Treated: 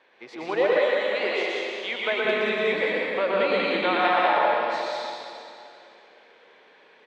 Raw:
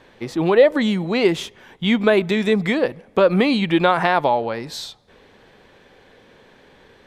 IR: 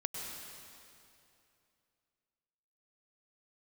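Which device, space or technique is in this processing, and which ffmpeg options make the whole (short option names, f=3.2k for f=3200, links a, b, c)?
station announcement: -filter_complex "[0:a]highpass=490,lowpass=4.4k,equalizer=f=2.3k:t=o:w=0.46:g=4,aecho=1:1:119.5|189.5:0.708|0.794[a];[1:a]atrim=start_sample=2205[b];[a][b]afir=irnorm=-1:irlink=0,asettb=1/sr,asplit=3[c][d][e];[c]atrim=end=0.774[f];[d]atrim=start=0.77:end=2.25,asetpts=PTS-STARTPTS,afade=t=in:d=0.004:c=qsin,afade=t=out:st=1.476:d=0.004:c=qsin,highpass=390[g];[e]atrim=start=2.246[h];[f][g]acrossfade=d=0.004:c1=hsin:c2=qsin[i];[i][h]acrossfade=d=0.004:c1=qsin:c2=hsin,volume=-7.5dB"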